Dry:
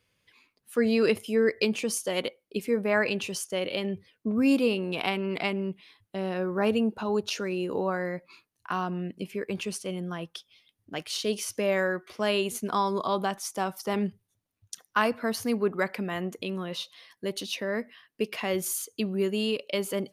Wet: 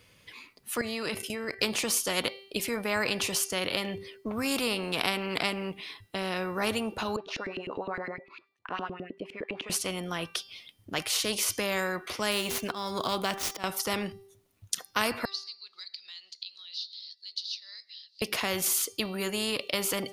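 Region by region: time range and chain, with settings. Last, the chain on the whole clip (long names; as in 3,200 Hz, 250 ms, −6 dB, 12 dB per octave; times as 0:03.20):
0:00.81–0:01.59: hum removal 383.3 Hz, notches 38 + output level in coarse steps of 16 dB
0:07.16–0:09.70: high-shelf EQ 7,800 Hz −10.5 dB + auto-filter band-pass saw up 9.8 Hz 280–3,300 Hz
0:12.31–0:13.64: running median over 5 samples + volume swells 263 ms
0:15.25–0:18.22: flat-topped band-pass 4,400 Hz, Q 4.8 + upward compression, threshold −47 dBFS
whole clip: notch filter 1,600 Hz, Q 18; hum removal 392.4 Hz, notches 14; every bin compressed towards the loudest bin 2 to 1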